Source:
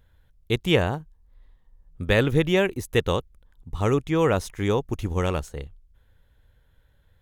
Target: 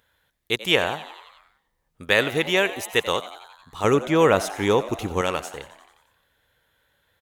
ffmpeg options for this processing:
ffmpeg -i in.wav -filter_complex "[0:a]asetnsamples=nb_out_samples=441:pad=0,asendcmd='3.84 highpass f 330;5.21 highpass f 810',highpass=frequency=950:poles=1,asplit=8[link_01][link_02][link_03][link_04][link_05][link_06][link_07][link_08];[link_02]adelay=89,afreqshift=93,volume=-15.5dB[link_09];[link_03]adelay=178,afreqshift=186,volume=-19.4dB[link_10];[link_04]adelay=267,afreqshift=279,volume=-23.3dB[link_11];[link_05]adelay=356,afreqshift=372,volume=-27.1dB[link_12];[link_06]adelay=445,afreqshift=465,volume=-31dB[link_13];[link_07]adelay=534,afreqshift=558,volume=-34.9dB[link_14];[link_08]adelay=623,afreqshift=651,volume=-38.8dB[link_15];[link_01][link_09][link_10][link_11][link_12][link_13][link_14][link_15]amix=inputs=8:normalize=0,volume=6dB" out.wav

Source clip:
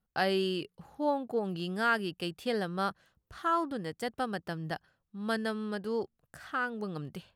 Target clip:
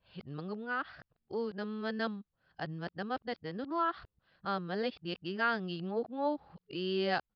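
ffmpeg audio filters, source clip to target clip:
ffmpeg -i in.wav -af "areverse,aresample=11025,aresample=44100,volume=-3dB" out.wav

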